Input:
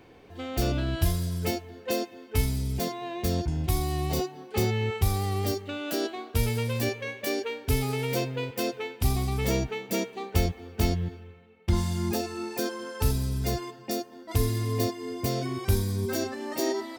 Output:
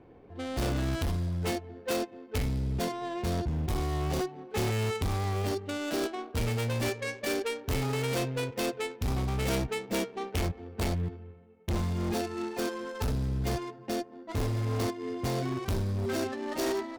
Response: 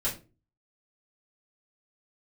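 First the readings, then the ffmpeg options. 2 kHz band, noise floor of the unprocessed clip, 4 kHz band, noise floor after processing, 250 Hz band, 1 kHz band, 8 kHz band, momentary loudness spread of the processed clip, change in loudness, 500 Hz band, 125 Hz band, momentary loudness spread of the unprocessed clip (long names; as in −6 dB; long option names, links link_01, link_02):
−1.0 dB, −50 dBFS, −3.0 dB, −51 dBFS, −2.0 dB, −1.0 dB, −4.0 dB, 5 LU, −2.5 dB, −2.0 dB, −3.0 dB, 5 LU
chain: -af "adynamicsmooth=sensitivity=5:basefreq=910,volume=26.5dB,asoftclip=hard,volume=-26.5dB,aemphasis=mode=production:type=75kf"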